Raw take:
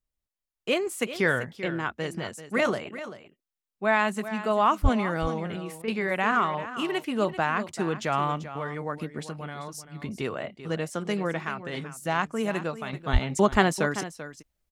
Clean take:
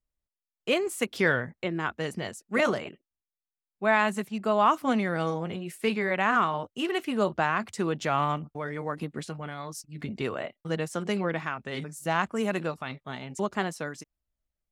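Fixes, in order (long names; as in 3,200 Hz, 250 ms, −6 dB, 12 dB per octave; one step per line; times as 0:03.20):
high-pass at the plosives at 0:04.82/0:13.12
repair the gap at 0:05.82, 58 ms
echo removal 389 ms −13 dB
level correction −8.5 dB, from 0:12.93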